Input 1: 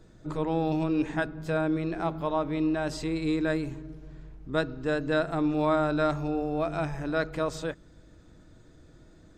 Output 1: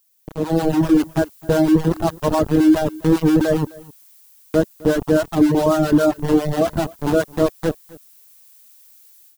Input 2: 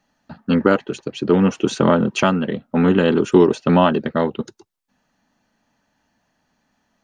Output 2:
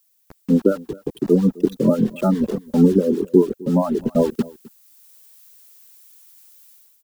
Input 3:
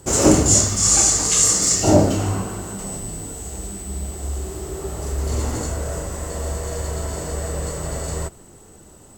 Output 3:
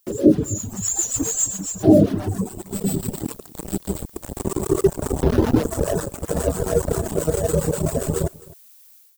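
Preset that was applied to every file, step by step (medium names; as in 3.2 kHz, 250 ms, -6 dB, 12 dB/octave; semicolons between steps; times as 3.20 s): loudest bins only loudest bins 16; high-pass 190 Hz 12 dB/octave; bit crusher 5-bit; dynamic bell 2.2 kHz, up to -6 dB, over -51 dBFS, Q 3.9; harmonic tremolo 7.4 Hz, depth 50%, crossover 740 Hz; reverb removal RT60 0.88 s; added noise violet -54 dBFS; tilt shelf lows +8 dB, about 710 Hz; level rider gain up to 14 dB; delay 259 ms -22 dB; trim -1 dB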